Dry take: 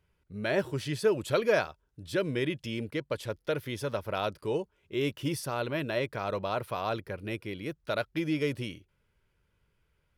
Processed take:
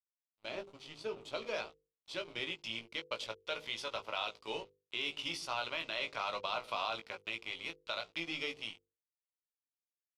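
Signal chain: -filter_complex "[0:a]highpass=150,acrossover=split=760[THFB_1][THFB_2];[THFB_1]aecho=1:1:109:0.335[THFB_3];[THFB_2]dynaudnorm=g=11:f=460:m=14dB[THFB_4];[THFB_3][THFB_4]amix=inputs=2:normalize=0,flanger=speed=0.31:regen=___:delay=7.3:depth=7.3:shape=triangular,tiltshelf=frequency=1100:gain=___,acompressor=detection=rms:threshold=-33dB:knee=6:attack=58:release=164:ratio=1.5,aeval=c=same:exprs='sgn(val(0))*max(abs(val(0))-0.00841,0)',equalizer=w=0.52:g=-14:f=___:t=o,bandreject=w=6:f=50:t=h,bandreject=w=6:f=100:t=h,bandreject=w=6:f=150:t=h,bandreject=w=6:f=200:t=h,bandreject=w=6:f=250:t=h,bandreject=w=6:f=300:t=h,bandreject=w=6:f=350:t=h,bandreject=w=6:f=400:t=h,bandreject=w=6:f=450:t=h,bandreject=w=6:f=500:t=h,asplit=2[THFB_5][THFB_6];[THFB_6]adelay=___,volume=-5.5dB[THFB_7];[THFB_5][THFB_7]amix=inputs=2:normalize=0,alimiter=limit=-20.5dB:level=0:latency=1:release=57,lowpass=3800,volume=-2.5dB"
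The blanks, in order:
-82, -6.5, 1700, 18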